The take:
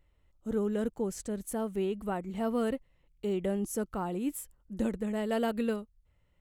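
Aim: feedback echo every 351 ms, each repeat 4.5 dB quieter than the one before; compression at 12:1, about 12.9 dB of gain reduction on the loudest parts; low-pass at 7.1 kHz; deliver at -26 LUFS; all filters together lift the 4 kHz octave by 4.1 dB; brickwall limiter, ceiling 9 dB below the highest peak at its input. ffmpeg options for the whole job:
-af "lowpass=7100,equalizer=f=4000:t=o:g=6.5,acompressor=threshold=0.0112:ratio=12,alimiter=level_in=5.31:limit=0.0631:level=0:latency=1,volume=0.188,aecho=1:1:351|702|1053|1404|1755|2106|2457|2808|3159:0.596|0.357|0.214|0.129|0.0772|0.0463|0.0278|0.0167|0.01,volume=10"

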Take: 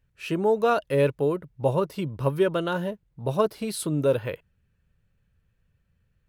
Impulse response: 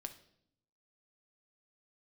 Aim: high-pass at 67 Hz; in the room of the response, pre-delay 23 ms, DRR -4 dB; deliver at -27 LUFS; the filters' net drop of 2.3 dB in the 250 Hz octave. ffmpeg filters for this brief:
-filter_complex "[0:a]highpass=67,equalizer=f=250:t=o:g=-3.5,asplit=2[s0][s1];[1:a]atrim=start_sample=2205,adelay=23[s2];[s1][s2]afir=irnorm=-1:irlink=0,volume=2.37[s3];[s0][s3]amix=inputs=2:normalize=0,volume=0.501"

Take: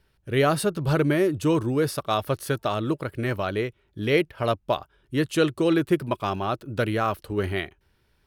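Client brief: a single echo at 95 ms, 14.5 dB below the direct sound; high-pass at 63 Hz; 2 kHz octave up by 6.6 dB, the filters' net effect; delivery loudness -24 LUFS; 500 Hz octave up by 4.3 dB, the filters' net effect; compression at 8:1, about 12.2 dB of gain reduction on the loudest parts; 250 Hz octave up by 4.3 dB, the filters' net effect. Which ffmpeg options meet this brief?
-af "highpass=63,equalizer=f=250:t=o:g=4.5,equalizer=f=500:t=o:g=3.5,equalizer=f=2000:t=o:g=8,acompressor=threshold=0.0631:ratio=8,aecho=1:1:95:0.188,volume=1.88"

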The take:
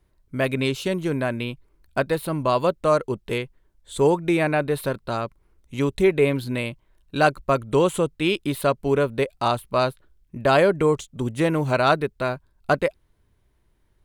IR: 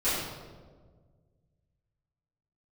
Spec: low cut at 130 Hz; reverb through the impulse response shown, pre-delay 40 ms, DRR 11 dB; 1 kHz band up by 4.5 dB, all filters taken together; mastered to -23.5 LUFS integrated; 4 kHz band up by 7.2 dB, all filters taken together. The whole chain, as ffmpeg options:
-filter_complex "[0:a]highpass=130,equalizer=f=1000:t=o:g=5.5,equalizer=f=4000:t=o:g=8.5,asplit=2[s0][s1];[1:a]atrim=start_sample=2205,adelay=40[s2];[s1][s2]afir=irnorm=-1:irlink=0,volume=0.075[s3];[s0][s3]amix=inputs=2:normalize=0,volume=0.708"

